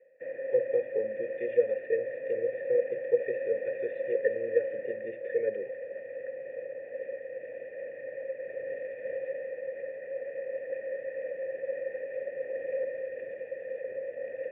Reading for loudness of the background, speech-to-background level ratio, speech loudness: −37.0 LKFS, 5.5 dB, −31.5 LKFS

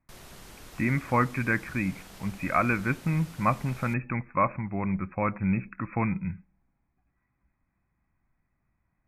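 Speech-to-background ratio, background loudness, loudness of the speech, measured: 19.0 dB, −48.0 LKFS, −29.0 LKFS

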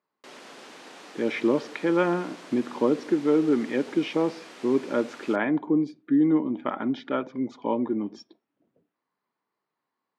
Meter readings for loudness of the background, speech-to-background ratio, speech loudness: −45.5 LKFS, 19.5 dB, −26.0 LKFS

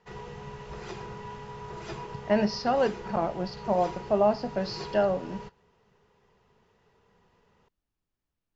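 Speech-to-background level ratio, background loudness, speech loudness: 13.0 dB, −41.0 LKFS, −28.0 LKFS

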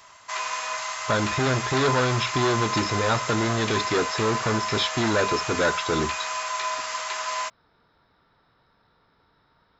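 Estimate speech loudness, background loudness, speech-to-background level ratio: −25.0 LKFS, −28.5 LKFS, 3.5 dB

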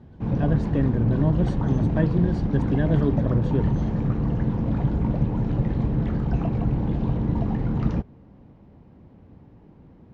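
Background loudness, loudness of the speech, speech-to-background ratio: −25.0 LKFS, −26.0 LKFS, −1.0 dB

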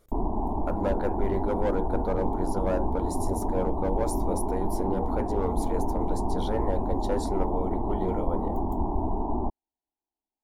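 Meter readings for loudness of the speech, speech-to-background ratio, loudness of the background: −33.0 LKFS, −2.5 dB, −30.5 LKFS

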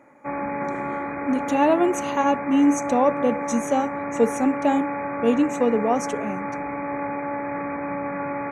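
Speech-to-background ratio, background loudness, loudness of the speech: 6.0 dB, −29.0 LKFS, −23.0 LKFS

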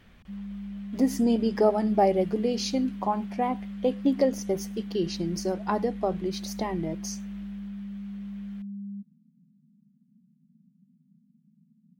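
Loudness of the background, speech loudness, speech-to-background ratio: −38.0 LKFS, −27.5 LKFS, 10.5 dB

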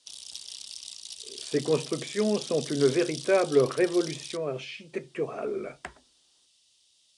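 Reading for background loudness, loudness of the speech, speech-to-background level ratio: −38.5 LKFS, −28.0 LKFS, 10.5 dB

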